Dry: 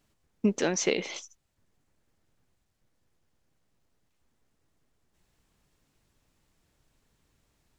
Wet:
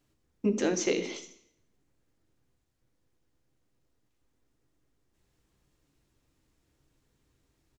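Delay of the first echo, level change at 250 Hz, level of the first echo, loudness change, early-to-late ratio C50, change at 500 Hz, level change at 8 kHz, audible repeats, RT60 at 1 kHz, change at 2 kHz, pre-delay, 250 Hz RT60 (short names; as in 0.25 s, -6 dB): 81 ms, -0.5 dB, -18.0 dB, -1.0 dB, 12.0 dB, 0.0 dB, -3.0 dB, 1, 0.65 s, -3.5 dB, 3 ms, 0.70 s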